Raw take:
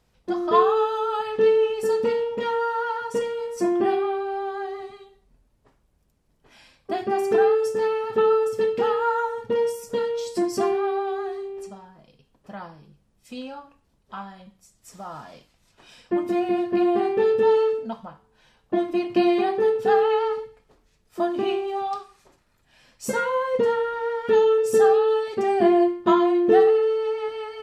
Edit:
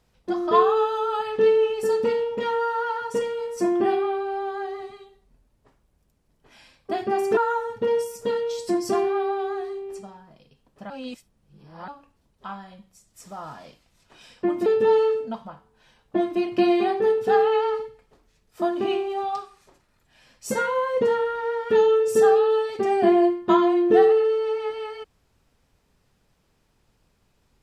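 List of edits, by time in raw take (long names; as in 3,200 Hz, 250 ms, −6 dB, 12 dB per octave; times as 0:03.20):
0:07.37–0:09.05: remove
0:12.58–0:13.56: reverse
0:16.34–0:17.24: remove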